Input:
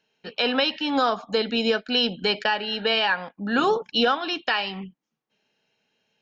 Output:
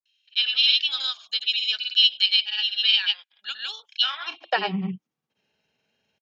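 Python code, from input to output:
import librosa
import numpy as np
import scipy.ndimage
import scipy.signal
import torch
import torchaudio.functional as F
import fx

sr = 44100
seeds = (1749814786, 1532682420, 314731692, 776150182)

y = fx.filter_sweep_highpass(x, sr, from_hz=3300.0, to_hz=72.0, start_s=4.04, end_s=5.04, q=3.3)
y = fx.granulator(y, sr, seeds[0], grain_ms=100.0, per_s=20.0, spray_ms=100.0, spread_st=0)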